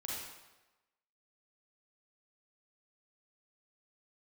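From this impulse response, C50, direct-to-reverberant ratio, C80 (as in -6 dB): -2.5 dB, -5.0 dB, 1.5 dB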